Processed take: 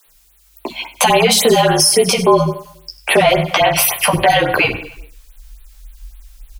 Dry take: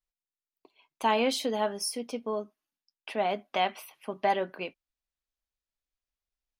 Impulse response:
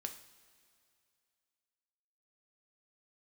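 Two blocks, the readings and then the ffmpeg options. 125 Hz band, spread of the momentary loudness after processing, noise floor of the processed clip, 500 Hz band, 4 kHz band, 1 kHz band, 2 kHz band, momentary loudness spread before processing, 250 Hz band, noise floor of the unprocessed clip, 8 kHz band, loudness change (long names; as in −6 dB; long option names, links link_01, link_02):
can't be measured, 16 LU, −52 dBFS, +17.0 dB, +20.0 dB, +15.0 dB, +20.5 dB, 14 LU, +15.5 dB, below −85 dBFS, +24.0 dB, +18.0 dB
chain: -filter_complex "[0:a]highshelf=frequency=4300:gain=8,acompressor=threshold=-41dB:ratio=2,asplit=2[link_01][link_02];[1:a]atrim=start_sample=2205,afade=type=out:start_time=0.28:duration=0.01,atrim=end_sample=12789[link_03];[link_02][link_03]afir=irnorm=-1:irlink=0,volume=0.5dB[link_04];[link_01][link_04]amix=inputs=2:normalize=0,asubboost=boost=11:cutoff=84,acrossover=split=280|1600|7300[link_05][link_06][link_07][link_08];[link_05]acompressor=threshold=-49dB:ratio=4[link_09];[link_06]acompressor=threshold=-37dB:ratio=4[link_10];[link_07]acompressor=threshold=-42dB:ratio=4[link_11];[link_08]acompressor=threshold=-44dB:ratio=4[link_12];[link_09][link_10][link_11][link_12]amix=inputs=4:normalize=0,asplit=2[link_13][link_14];[link_14]adelay=14,volume=-3dB[link_15];[link_13][link_15]amix=inputs=2:normalize=0,asplit=2[link_16][link_17];[link_17]aecho=0:1:96|192|288|384:0.119|0.0594|0.0297|0.0149[link_18];[link_16][link_18]amix=inputs=2:normalize=0,afreqshift=-48,acrossover=split=200[link_19][link_20];[link_19]adelay=50[link_21];[link_21][link_20]amix=inputs=2:normalize=0,alimiter=level_in=31dB:limit=-1dB:release=50:level=0:latency=1,afftfilt=real='re*(1-between(b*sr/1024,310*pow(6600/310,0.5+0.5*sin(2*PI*3.6*pts/sr))/1.41,310*pow(6600/310,0.5+0.5*sin(2*PI*3.6*pts/sr))*1.41))':imag='im*(1-between(b*sr/1024,310*pow(6600/310,0.5+0.5*sin(2*PI*3.6*pts/sr))/1.41,310*pow(6600/310,0.5+0.5*sin(2*PI*3.6*pts/sr))*1.41))':win_size=1024:overlap=0.75,volume=-1.5dB"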